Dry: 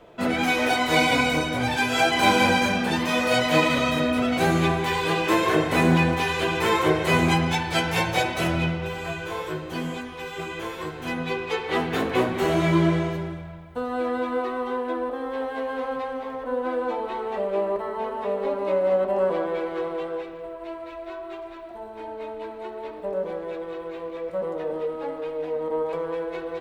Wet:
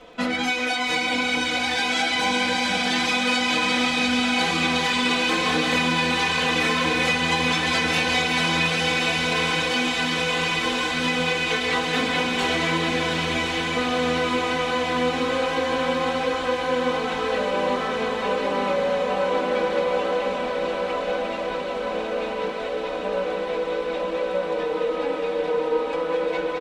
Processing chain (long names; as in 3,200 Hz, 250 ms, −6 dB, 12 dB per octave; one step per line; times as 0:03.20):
low-pass filter 6,500 Hz 12 dB per octave
high-shelf EQ 2,100 Hz +10.5 dB
comb filter 4 ms, depth 82%
on a send: delay with a high-pass on its return 351 ms, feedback 71%, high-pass 2,100 Hz, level −6.5 dB
on the sum: downward compressor 6 to 1, threshold −22 dBFS, peak gain reduction 13.5 dB
surface crackle 24 per second −50 dBFS
feedback delay with all-pass diffusion 944 ms, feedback 80%, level −4.5 dB